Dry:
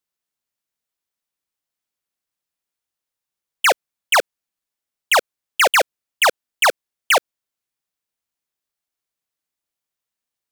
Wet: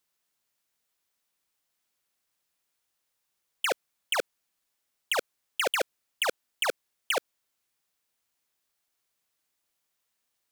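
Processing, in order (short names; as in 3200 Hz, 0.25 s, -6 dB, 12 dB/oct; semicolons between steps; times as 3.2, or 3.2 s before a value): low shelf 400 Hz -3.5 dB; negative-ratio compressor -20 dBFS, ratio -0.5; gain -3 dB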